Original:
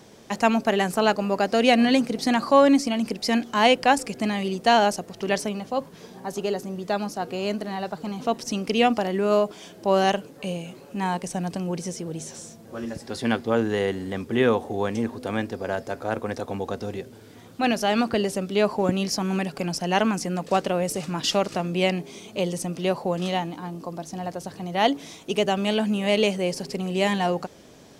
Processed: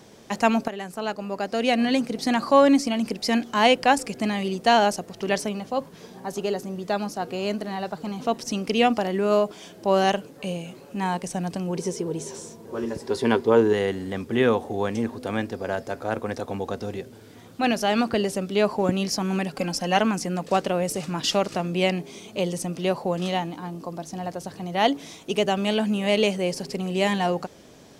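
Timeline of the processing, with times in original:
0.68–2.57 s: fade in, from -13 dB
11.75–13.73 s: small resonant body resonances 410/960 Hz, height 13 dB, ringing for 40 ms
19.56–19.97 s: comb 3.8 ms

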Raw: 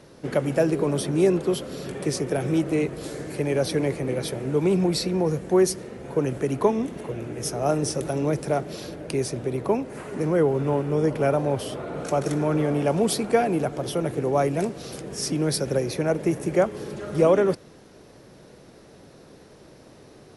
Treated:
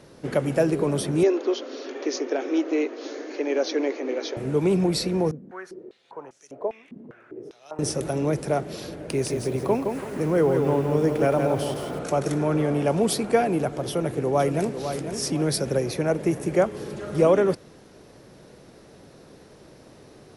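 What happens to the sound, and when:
1.23–4.37 s: brick-wall FIR band-pass 240–6900 Hz
5.31–7.79 s: step-sequenced band-pass 5 Hz 230–6000 Hz
8.93–11.99 s: bit-crushed delay 166 ms, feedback 35%, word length 8-bit, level -5 dB
13.89–14.80 s: echo throw 500 ms, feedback 35%, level -8.5 dB

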